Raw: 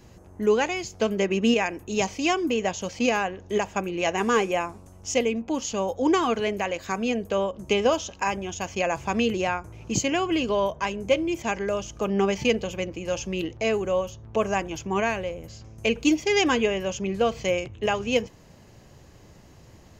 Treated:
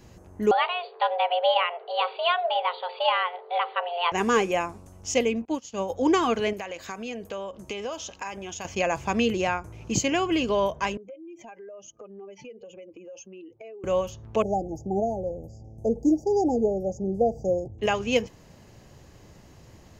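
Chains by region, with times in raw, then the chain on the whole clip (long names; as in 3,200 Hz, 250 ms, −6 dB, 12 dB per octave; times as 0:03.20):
0:00.51–0:04.12: mains-hum notches 60/120/180/240/300/360/420/480/540/600 Hz + frequency shifter +350 Hz + linear-phase brick-wall low-pass 4,700 Hz
0:05.45–0:05.90: high-pass filter 53 Hz + expander for the loud parts 2.5 to 1, over −42 dBFS
0:06.53–0:08.65: low-shelf EQ 320 Hz −7 dB + downward compressor 3 to 1, threshold −32 dBFS
0:10.97–0:13.84: expanding power law on the bin magnitudes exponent 1.9 + high-pass filter 390 Hz + downward compressor 5 to 1, threshold −42 dBFS
0:14.42–0:17.79: linear-phase brick-wall band-stop 880–4,600 Hz + high shelf with overshoot 2,900 Hz −11 dB, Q 3
whole clip: no processing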